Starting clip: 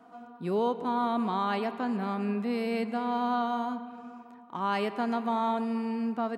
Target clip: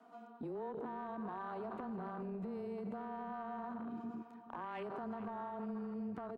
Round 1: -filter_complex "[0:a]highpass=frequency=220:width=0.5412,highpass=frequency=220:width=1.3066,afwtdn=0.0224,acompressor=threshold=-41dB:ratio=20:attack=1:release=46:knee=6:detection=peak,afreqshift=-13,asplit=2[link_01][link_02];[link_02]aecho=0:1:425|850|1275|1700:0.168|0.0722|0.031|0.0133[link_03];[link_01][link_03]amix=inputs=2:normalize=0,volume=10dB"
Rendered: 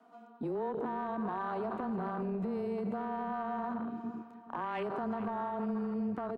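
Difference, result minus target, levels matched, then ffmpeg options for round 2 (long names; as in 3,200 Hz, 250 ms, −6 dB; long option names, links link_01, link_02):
downward compressor: peak gain reduction −7.5 dB
-filter_complex "[0:a]highpass=frequency=220:width=0.5412,highpass=frequency=220:width=1.3066,afwtdn=0.0224,acompressor=threshold=-49dB:ratio=20:attack=1:release=46:knee=6:detection=peak,afreqshift=-13,asplit=2[link_01][link_02];[link_02]aecho=0:1:425|850|1275|1700:0.168|0.0722|0.031|0.0133[link_03];[link_01][link_03]amix=inputs=2:normalize=0,volume=10dB"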